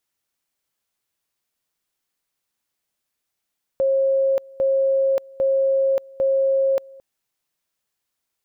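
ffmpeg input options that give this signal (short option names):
-f lavfi -i "aevalsrc='pow(10,(-15.5-24.5*gte(mod(t,0.8),0.58))/20)*sin(2*PI*540*t)':d=3.2:s=44100"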